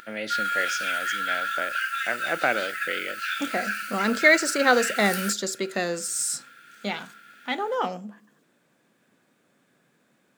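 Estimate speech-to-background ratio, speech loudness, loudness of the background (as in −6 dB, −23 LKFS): 3.0 dB, −26.0 LKFS, −29.0 LKFS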